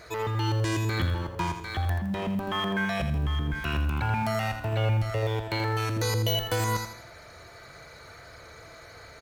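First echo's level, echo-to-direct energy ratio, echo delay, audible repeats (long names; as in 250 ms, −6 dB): −8.5 dB, −7.5 dB, 82 ms, 3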